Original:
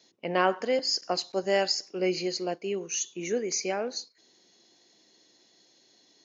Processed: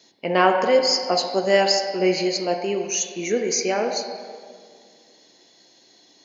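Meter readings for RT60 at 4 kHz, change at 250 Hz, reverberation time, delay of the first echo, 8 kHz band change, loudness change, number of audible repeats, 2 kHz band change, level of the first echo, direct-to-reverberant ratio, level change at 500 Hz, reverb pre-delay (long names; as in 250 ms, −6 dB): 1.4 s, +7.5 dB, 2.0 s, no echo audible, can't be measured, +8.0 dB, no echo audible, +8.0 dB, no echo audible, 3.0 dB, +8.5 dB, 10 ms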